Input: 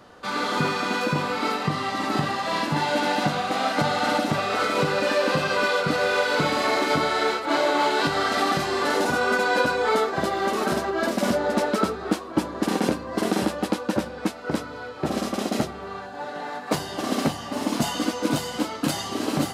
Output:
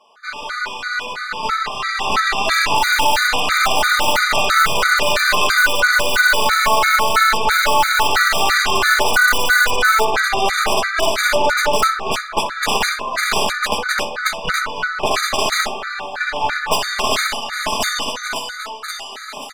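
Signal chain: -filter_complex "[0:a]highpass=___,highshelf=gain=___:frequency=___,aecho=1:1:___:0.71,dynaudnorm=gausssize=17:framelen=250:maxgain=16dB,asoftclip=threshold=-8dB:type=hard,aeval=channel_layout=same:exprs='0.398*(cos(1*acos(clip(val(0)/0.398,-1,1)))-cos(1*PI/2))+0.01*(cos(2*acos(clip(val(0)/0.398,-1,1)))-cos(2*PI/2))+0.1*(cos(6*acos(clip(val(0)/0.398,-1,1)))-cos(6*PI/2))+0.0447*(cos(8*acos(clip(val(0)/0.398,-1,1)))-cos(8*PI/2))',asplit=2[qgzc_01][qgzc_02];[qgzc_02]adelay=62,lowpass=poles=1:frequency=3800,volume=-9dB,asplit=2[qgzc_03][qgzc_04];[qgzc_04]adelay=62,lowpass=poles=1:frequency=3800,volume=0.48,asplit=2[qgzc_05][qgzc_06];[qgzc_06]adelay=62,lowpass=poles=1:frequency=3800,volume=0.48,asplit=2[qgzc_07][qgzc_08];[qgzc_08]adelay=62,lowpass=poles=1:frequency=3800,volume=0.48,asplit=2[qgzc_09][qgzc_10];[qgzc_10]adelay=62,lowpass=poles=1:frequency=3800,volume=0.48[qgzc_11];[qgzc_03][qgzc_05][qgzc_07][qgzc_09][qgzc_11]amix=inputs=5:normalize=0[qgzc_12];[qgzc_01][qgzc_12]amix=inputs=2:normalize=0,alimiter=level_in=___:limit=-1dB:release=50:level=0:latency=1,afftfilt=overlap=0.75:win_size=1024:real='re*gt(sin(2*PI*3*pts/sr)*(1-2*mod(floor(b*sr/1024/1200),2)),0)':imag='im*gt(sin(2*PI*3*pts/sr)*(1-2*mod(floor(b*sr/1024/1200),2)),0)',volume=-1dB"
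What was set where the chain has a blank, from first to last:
1100, -9.5, 5600, 4.7, 6dB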